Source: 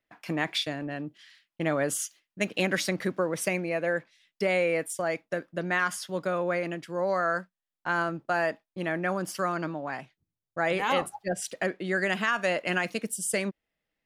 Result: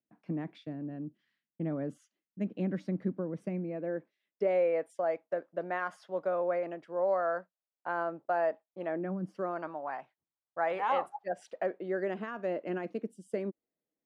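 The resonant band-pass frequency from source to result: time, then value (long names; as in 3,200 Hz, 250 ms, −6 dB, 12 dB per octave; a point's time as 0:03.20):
resonant band-pass, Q 1.5
0:03.60 210 Hz
0:04.72 630 Hz
0:08.88 630 Hz
0:09.19 150 Hz
0:09.63 830 Hz
0:11.31 830 Hz
0:12.29 340 Hz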